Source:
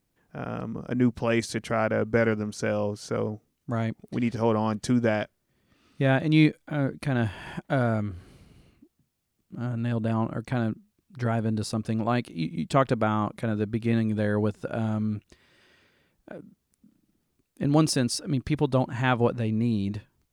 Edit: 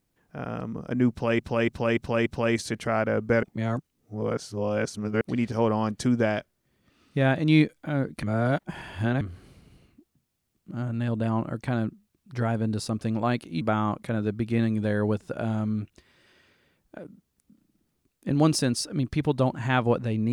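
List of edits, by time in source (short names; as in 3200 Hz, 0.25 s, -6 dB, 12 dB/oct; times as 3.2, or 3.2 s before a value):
1.1–1.39 loop, 5 plays
2.27–4.05 reverse
7.07–8.05 reverse
12.45–12.95 cut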